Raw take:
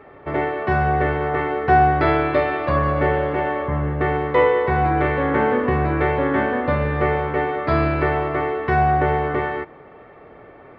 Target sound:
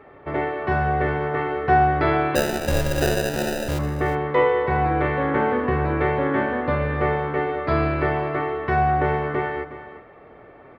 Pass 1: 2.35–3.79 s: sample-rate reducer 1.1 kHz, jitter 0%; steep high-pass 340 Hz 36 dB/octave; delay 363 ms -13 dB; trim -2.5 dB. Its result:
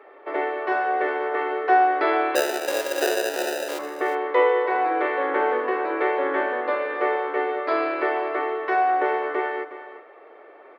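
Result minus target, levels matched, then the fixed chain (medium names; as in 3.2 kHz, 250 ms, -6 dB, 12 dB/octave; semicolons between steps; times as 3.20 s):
250 Hz band -4.5 dB
2.35–3.79 s: sample-rate reducer 1.1 kHz, jitter 0%; delay 363 ms -13 dB; trim -2.5 dB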